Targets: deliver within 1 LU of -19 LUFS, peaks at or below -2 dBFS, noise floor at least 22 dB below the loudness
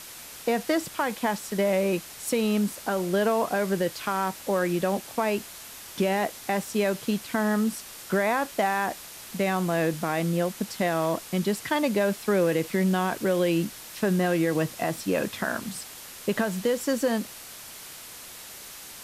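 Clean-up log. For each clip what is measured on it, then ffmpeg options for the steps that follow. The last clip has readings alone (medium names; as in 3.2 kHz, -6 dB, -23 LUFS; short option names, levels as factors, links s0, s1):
noise floor -43 dBFS; noise floor target -49 dBFS; loudness -26.5 LUFS; peak level -13.5 dBFS; loudness target -19.0 LUFS
-> -af "afftdn=nr=6:nf=-43"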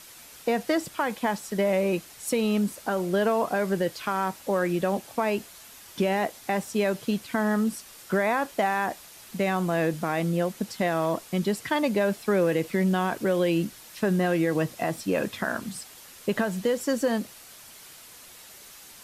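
noise floor -48 dBFS; noise floor target -49 dBFS
-> -af "afftdn=nr=6:nf=-48"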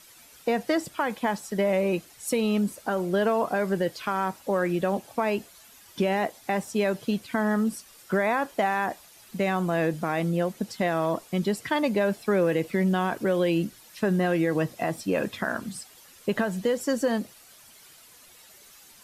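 noise floor -53 dBFS; loudness -27.0 LUFS; peak level -14.0 dBFS; loudness target -19.0 LUFS
-> -af "volume=2.51"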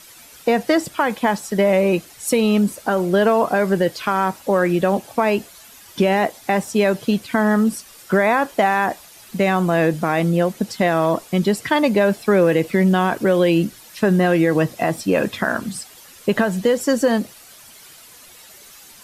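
loudness -19.0 LUFS; peak level -6.0 dBFS; noise floor -45 dBFS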